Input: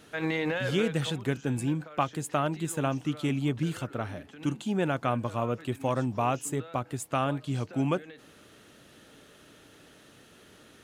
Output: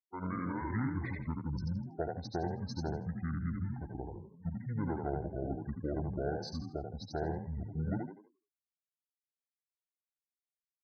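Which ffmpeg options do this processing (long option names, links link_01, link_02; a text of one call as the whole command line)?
ffmpeg -i in.wav -filter_complex "[0:a]afftfilt=real='re*gte(hypot(re,im),0.0224)':imag='im*gte(hypot(re,im),0.0224)':win_size=1024:overlap=0.75,asplit=5[link_01][link_02][link_03][link_04][link_05];[link_02]adelay=81,afreqshift=62,volume=-4dB[link_06];[link_03]adelay=162,afreqshift=124,volume=-13.9dB[link_07];[link_04]adelay=243,afreqshift=186,volume=-23.8dB[link_08];[link_05]adelay=324,afreqshift=248,volume=-33.7dB[link_09];[link_01][link_06][link_07][link_08][link_09]amix=inputs=5:normalize=0,asetrate=25476,aresample=44100,atempo=1.73107,volume=-8.5dB" out.wav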